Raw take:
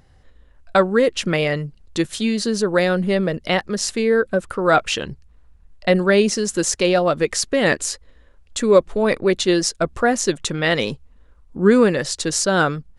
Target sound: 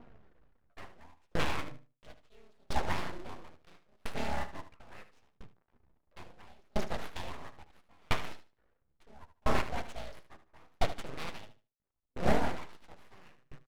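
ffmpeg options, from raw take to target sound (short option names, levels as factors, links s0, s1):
-filter_complex "[0:a]highpass=f=100:p=1,bandreject=f=2700:w=28,acrossover=split=1700[s0][s1];[s0]acompressor=mode=upward:threshold=0.0224:ratio=2.5[s2];[s2][s1]amix=inputs=2:normalize=0,atempo=0.95,acrusher=bits=5:dc=4:mix=0:aa=0.000001,asplit=3[s3][s4][s5];[s4]asetrate=35002,aresample=44100,atempo=1.25992,volume=0.158[s6];[s5]asetrate=37084,aresample=44100,atempo=1.18921,volume=0.794[s7];[s3][s6][s7]amix=inputs=3:normalize=0,flanger=delay=4.2:depth=8.3:regen=61:speed=0.43:shape=sinusoidal,aeval=exprs='abs(val(0))':c=same,adynamicsmooth=sensitivity=4:basefreq=2000,aecho=1:1:75|150|225:0.316|0.0791|0.0198,aeval=exprs='val(0)*pow(10,-40*if(lt(mod(0.74*n/s,1),2*abs(0.74)/1000),1-mod(0.74*n/s,1)/(2*abs(0.74)/1000),(mod(0.74*n/s,1)-2*abs(0.74)/1000)/(1-2*abs(0.74)/1000))/20)':c=same,volume=0.596"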